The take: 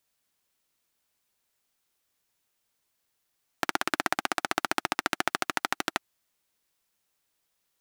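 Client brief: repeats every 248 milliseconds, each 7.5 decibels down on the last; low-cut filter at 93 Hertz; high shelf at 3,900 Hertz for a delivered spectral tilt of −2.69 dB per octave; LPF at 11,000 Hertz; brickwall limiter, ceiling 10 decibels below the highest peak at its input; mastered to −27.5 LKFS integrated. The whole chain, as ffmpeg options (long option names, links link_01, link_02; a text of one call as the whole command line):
ffmpeg -i in.wav -af "highpass=93,lowpass=11000,highshelf=frequency=3900:gain=-8,alimiter=limit=-17dB:level=0:latency=1,aecho=1:1:248|496|744|992|1240:0.422|0.177|0.0744|0.0312|0.0131,volume=12.5dB" out.wav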